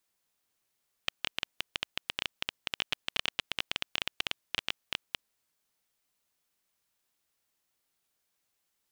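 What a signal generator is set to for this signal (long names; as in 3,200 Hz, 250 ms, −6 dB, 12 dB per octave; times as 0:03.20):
Geiger counter clicks 13 per second −11.5 dBFS 4.14 s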